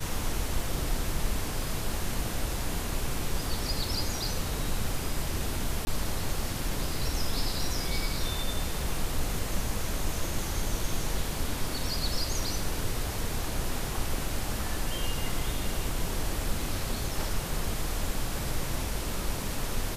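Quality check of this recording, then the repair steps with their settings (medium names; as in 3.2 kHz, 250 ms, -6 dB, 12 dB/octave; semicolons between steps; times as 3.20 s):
5.85–5.87 s: dropout 20 ms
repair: interpolate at 5.85 s, 20 ms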